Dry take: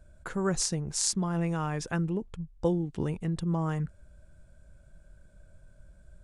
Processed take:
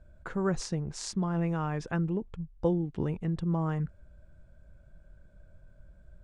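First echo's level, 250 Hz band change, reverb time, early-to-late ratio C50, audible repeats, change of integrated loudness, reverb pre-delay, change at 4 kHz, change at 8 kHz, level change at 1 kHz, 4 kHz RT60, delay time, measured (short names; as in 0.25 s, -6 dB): none, 0.0 dB, none, none, none, -1.5 dB, none, -8.0 dB, under -10 dB, -1.0 dB, none, none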